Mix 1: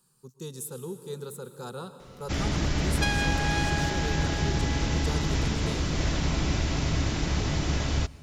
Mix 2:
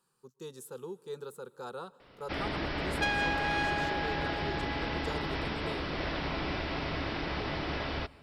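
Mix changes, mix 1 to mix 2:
speech: send -11.5 dB; first sound: add steep low-pass 5400 Hz 96 dB/oct; master: add tone controls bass -13 dB, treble -11 dB

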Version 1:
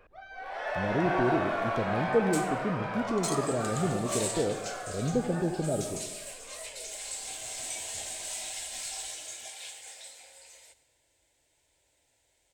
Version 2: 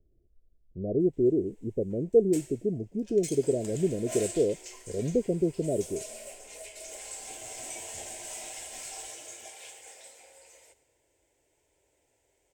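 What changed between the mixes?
speech: send off; first sound: muted; master: add fifteen-band EQ 400 Hz +9 dB, 1600 Hz -3 dB, 4000 Hz -10 dB, 10000 Hz -4 dB

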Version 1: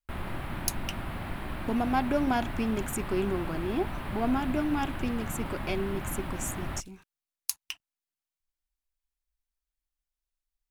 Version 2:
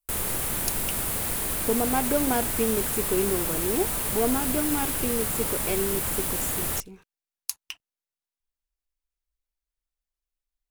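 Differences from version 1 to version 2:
background: remove air absorption 460 m; master: add bell 460 Hz +12.5 dB 0.36 oct

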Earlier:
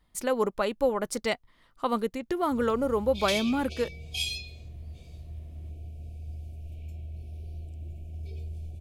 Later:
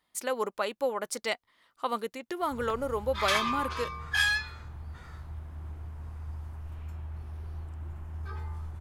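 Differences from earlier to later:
speech: add HPF 670 Hz 6 dB/oct; background: remove brick-wall FIR band-stop 750–2200 Hz

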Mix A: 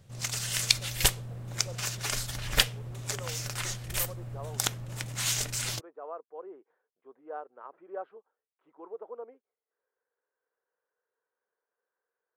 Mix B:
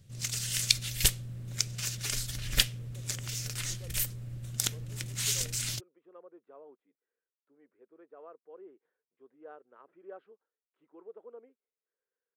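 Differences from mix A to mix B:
speech: entry +2.15 s; master: add bell 860 Hz -13.5 dB 1.7 oct

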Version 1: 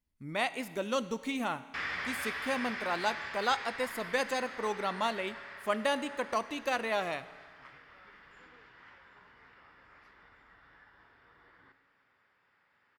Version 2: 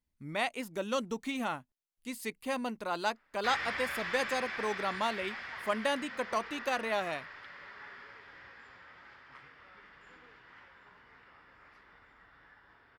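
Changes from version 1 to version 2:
speech: send off; background: entry +1.70 s

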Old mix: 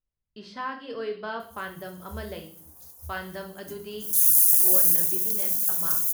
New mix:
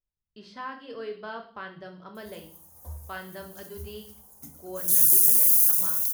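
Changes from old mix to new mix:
speech -4.0 dB; background: entry +0.75 s

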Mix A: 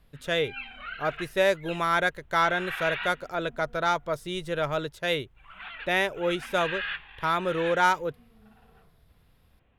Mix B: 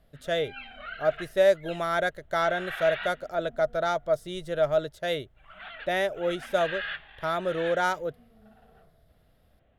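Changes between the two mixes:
speech -3.0 dB; master: add thirty-one-band EQ 630 Hz +11 dB, 1000 Hz -8 dB, 2500 Hz -7 dB

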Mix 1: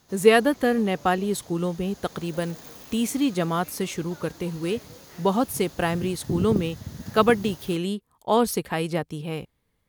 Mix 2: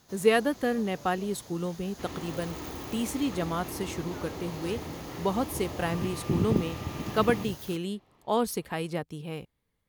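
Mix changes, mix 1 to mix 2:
speech -6.0 dB; second sound: unmuted

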